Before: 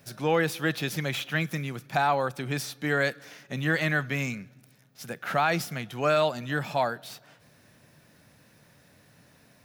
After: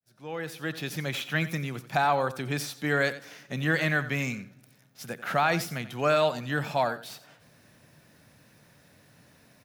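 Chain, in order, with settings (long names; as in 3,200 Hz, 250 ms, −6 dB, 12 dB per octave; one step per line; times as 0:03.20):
fade in at the beginning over 1.34 s
single-tap delay 89 ms −14.5 dB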